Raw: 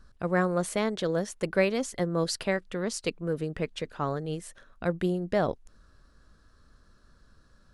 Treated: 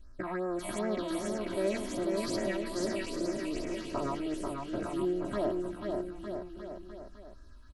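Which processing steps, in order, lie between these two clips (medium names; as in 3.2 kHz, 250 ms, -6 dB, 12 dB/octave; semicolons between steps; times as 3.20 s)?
spectrogram pixelated in time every 200 ms; phase shifter stages 6, 2.6 Hz, lowest notch 400–3700 Hz; peak limiter -25 dBFS, peak gain reduction 9.5 dB; comb 3.1 ms, depth 99%; bouncing-ball echo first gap 490 ms, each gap 0.85×, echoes 5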